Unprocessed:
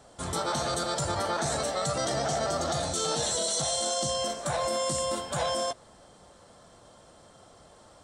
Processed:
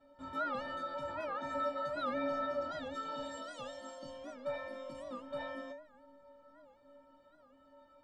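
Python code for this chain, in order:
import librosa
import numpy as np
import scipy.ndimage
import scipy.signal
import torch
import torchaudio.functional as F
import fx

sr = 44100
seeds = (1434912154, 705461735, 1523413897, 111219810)

y = fx.air_absorb(x, sr, metres=400.0)
y = fx.stiff_resonator(y, sr, f0_hz=270.0, decay_s=0.73, stiffness=0.03)
y = fx.record_warp(y, sr, rpm=78.0, depth_cents=160.0)
y = F.gain(torch.from_numpy(y), 12.5).numpy()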